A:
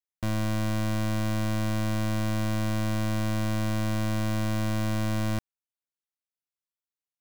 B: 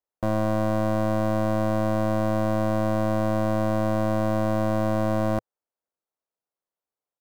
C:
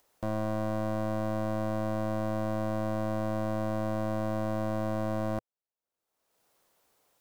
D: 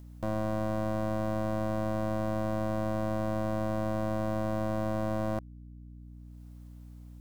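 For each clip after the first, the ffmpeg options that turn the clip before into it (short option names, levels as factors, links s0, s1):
-af "firequalizer=gain_entry='entry(110,0);entry(510,13);entry(2300,-6)':delay=0.05:min_phase=1"
-af "acompressor=mode=upward:threshold=0.01:ratio=2.5,volume=0.422"
-af "aeval=exprs='val(0)+0.00501*(sin(2*PI*60*n/s)+sin(2*PI*2*60*n/s)/2+sin(2*PI*3*60*n/s)/3+sin(2*PI*4*60*n/s)/4+sin(2*PI*5*60*n/s)/5)':c=same"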